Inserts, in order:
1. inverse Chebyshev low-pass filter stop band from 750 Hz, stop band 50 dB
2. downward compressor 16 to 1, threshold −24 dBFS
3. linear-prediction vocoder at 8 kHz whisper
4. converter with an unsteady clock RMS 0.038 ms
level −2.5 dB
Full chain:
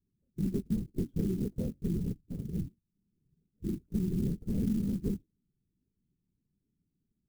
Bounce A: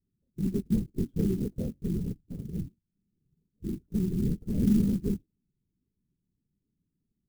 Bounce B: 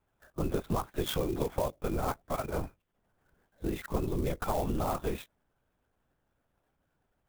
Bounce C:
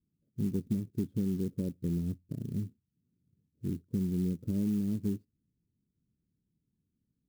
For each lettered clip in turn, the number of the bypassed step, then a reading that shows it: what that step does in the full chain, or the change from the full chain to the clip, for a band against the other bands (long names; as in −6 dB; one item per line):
2, average gain reduction 2.5 dB
1, change in crest factor +2.0 dB
3, change in crest factor −1.5 dB